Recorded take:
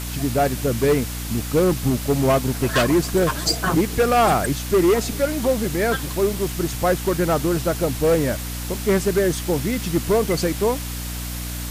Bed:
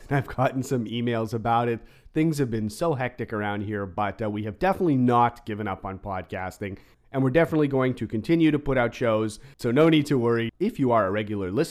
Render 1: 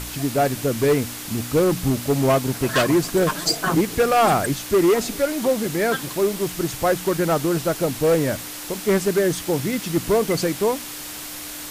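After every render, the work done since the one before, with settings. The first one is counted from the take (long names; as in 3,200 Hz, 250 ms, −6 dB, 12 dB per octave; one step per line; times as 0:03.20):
hum removal 60 Hz, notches 4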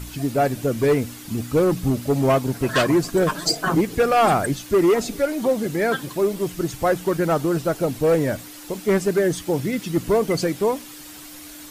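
broadband denoise 9 dB, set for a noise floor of −34 dBFS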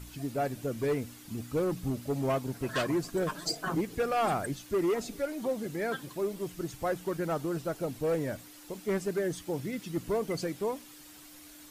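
level −11.5 dB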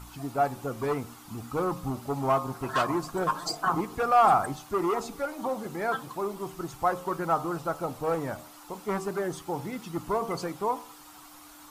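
flat-topped bell 1,000 Hz +12 dB 1.1 octaves
hum removal 76.74 Hz, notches 17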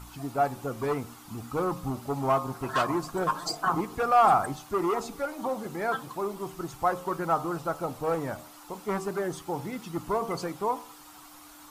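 no processing that can be heard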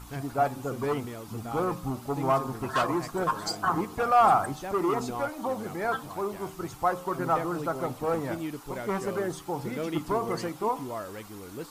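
mix in bed −15 dB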